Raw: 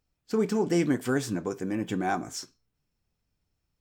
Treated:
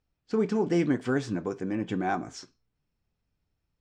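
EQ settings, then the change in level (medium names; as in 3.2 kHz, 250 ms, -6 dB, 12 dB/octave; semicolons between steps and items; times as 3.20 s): distance through air 110 m; 0.0 dB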